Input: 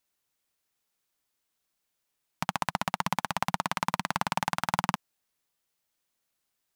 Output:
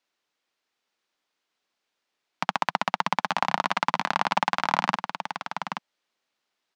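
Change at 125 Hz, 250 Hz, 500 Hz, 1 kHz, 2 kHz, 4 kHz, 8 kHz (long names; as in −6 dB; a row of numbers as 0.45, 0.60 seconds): −3.0, +0.5, +5.5, +5.5, +5.5, +4.5, −3.5 decibels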